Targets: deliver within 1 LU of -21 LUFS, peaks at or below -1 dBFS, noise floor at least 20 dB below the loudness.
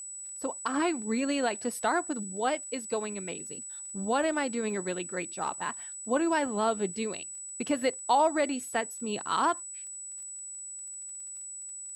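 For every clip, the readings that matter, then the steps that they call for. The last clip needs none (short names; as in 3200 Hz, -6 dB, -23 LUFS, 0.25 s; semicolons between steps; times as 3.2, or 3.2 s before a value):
ticks 28/s; steady tone 7900 Hz; tone level -39 dBFS; loudness -31.0 LUFS; peak -15.0 dBFS; loudness target -21.0 LUFS
-> de-click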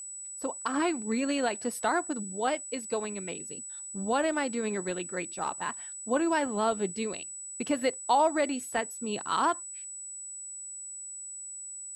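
ticks 0.084/s; steady tone 7900 Hz; tone level -39 dBFS
-> notch 7900 Hz, Q 30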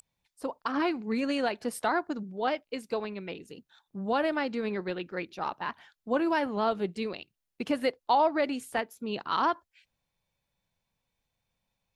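steady tone none; loudness -31.0 LUFS; peak -15.0 dBFS; loudness target -21.0 LUFS
-> gain +10 dB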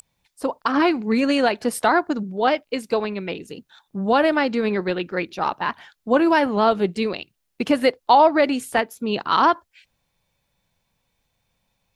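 loudness -21.0 LUFS; peak -5.0 dBFS; noise floor -74 dBFS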